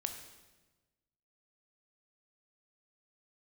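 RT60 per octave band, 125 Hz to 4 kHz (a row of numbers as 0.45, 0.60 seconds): 1.6, 1.4, 1.3, 1.1, 1.1, 1.0 seconds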